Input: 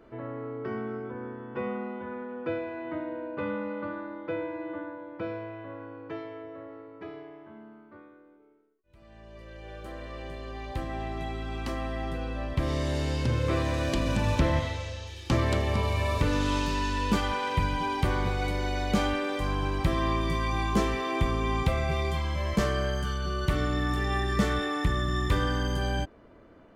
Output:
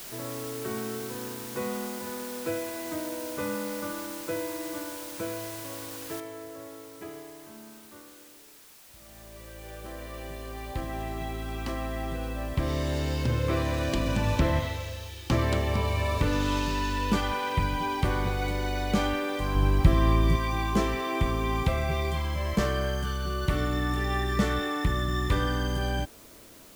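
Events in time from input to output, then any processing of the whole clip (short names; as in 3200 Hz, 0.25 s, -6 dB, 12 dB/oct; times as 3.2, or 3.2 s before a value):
6.2 noise floor step -42 dB -53 dB
19.55–20.36 low shelf 210 Hz +9 dB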